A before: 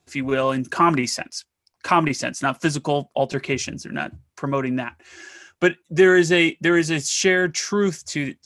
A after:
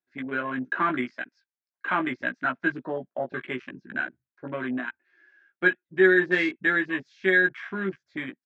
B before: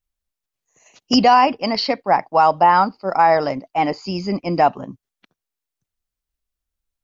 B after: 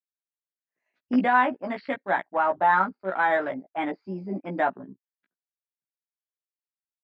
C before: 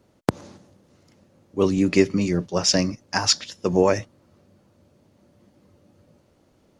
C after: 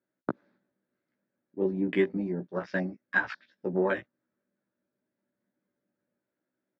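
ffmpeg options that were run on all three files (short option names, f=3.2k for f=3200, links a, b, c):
-filter_complex "[0:a]highpass=250,equalizer=f=470:t=q:w=4:g=-7,equalizer=f=770:t=q:w=4:g=-7,equalizer=f=1.1k:t=q:w=4:g=-6,equalizer=f=1.6k:t=q:w=4:g=9,equalizer=f=2.9k:t=q:w=4:g=-10,lowpass=f=3.3k:w=0.5412,lowpass=f=3.3k:w=1.3066,afwtdn=0.0316,asplit=2[a][b];[b]adelay=16,volume=-3.5dB[c];[a][c]amix=inputs=2:normalize=0,volume=-6dB"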